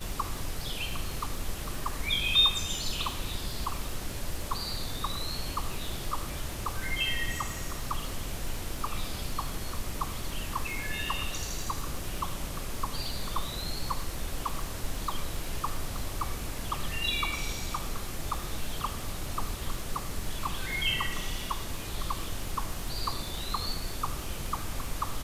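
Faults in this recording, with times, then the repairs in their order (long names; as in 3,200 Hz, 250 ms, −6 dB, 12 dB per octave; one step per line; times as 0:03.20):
surface crackle 60 per second −36 dBFS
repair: click removal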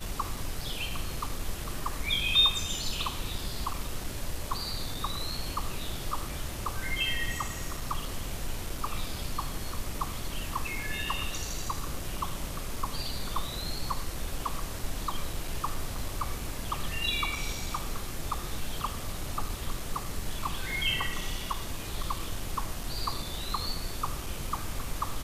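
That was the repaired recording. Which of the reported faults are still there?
none of them is left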